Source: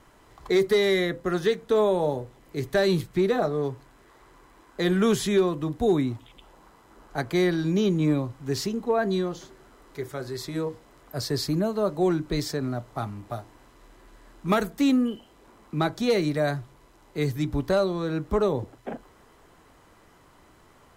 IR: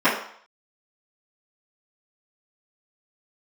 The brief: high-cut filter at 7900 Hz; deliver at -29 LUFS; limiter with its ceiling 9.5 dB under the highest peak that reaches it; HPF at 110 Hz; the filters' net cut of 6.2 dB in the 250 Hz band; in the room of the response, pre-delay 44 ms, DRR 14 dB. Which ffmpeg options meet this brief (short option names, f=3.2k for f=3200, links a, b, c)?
-filter_complex "[0:a]highpass=110,lowpass=7.9k,equalizer=f=250:t=o:g=-9,alimiter=limit=-22.5dB:level=0:latency=1,asplit=2[a][b];[1:a]atrim=start_sample=2205,adelay=44[c];[b][c]afir=irnorm=-1:irlink=0,volume=-35dB[d];[a][d]amix=inputs=2:normalize=0,volume=3.5dB"